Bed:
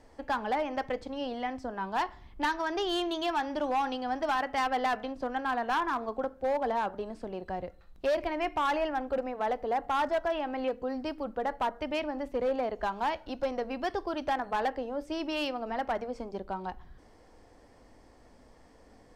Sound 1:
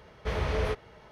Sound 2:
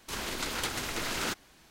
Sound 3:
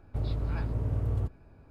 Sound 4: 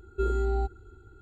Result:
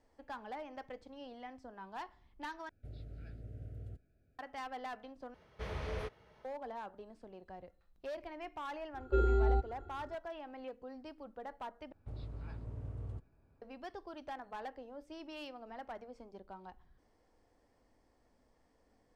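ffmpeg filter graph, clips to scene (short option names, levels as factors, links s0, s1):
-filter_complex "[3:a]asplit=2[s0][s1];[0:a]volume=0.188[s2];[s0]asuperstop=centerf=1000:order=8:qfactor=1.7[s3];[4:a]lowpass=4000[s4];[s1]aresample=22050,aresample=44100[s5];[s2]asplit=4[s6][s7][s8][s9];[s6]atrim=end=2.694[s10];[s3]atrim=end=1.7,asetpts=PTS-STARTPTS,volume=0.133[s11];[s7]atrim=start=4.386:end=5.344[s12];[1:a]atrim=end=1.11,asetpts=PTS-STARTPTS,volume=0.282[s13];[s8]atrim=start=6.446:end=11.924[s14];[s5]atrim=end=1.7,asetpts=PTS-STARTPTS,volume=0.2[s15];[s9]atrim=start=13.616[s16];[s4]atrim=end=1.21,asetpts=PTS-STARTPTS,volume=0.794,afade=t=in:d=0.004:c=hsin,afade=t=out:st=1.206:d=0.004:c=hsin,adelay=8940[s17];[s10][s11]acrossfade=d=0.004:c1=hsin:c2=hsin[s18];[s18][s12]acrossfade=d=0.004:c1=hsin:c2=hsin[s19];[s19][s13]acrossfade=d=0.004:c1=hsin:c2=hsin[s20];[s20][s14]acrossfade=d=0.004:c1=hsin:c2=hsin[s21];[s21][s15]acrossfade=d=0.004:c1=hsin:c2=hsin[s22];[s22][s16]acrossfade=d=0.004:c1=hsin:c2=hsin[s23];[s23][s17]amix=inputs=2:normalize=0"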